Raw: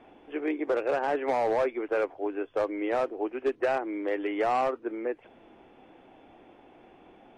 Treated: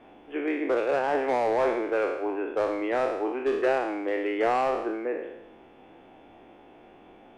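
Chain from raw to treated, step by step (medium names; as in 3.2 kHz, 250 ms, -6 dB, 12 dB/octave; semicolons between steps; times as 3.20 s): spectral sustain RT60 0.91 s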